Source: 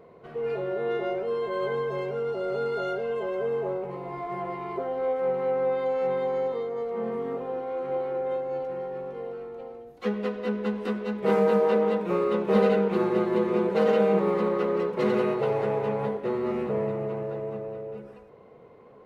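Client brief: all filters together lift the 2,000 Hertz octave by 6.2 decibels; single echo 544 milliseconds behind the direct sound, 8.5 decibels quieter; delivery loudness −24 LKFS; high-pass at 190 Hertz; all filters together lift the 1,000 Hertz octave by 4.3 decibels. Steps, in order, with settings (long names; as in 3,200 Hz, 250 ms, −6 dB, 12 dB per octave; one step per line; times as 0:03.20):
high-pass filter 190 Hz
parametric band 1,000 Hz +4 dB
parametric band 2,000 Hz +6.5 dB
single-tap delay 544 ms −8.5 dB
level +1.5 dB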